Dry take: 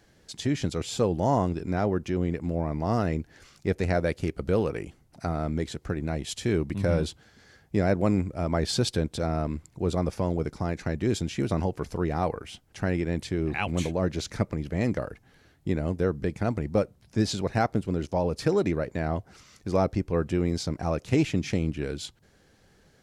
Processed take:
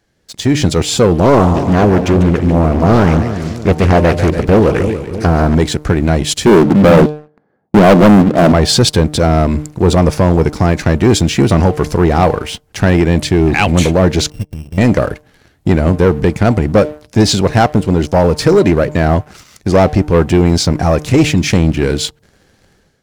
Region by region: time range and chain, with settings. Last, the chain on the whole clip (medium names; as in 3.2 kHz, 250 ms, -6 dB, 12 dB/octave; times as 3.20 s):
1.20–5.55 s: two-band feedback delay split 470 Hz, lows 310 ms, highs 145 ms, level -11 dB + loudspeaker Doppler distortion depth 0.63 ms
6.46–8.52 s: Chebyshev band-pass 190–880 Hz + waveshaping leveller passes 3
14.30–14.78 s: sorted samples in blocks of 16 samples + amplifier tone stack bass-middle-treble 10-0-1
20.81–21.53 s: treble shelf 8.3 kHz +4.5 dB + transformer saturation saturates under 330 Hz
whole clip: de-hum 150.8 Hz, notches 7; level rider gain up to 11.5 dB; waveshaping leveller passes 2; trim +1 dB